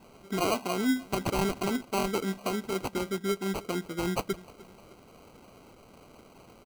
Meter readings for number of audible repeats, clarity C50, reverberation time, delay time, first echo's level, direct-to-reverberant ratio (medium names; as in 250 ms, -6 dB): 2, no reverb, no reverb, 305 ms, -21.5 dB, no reverb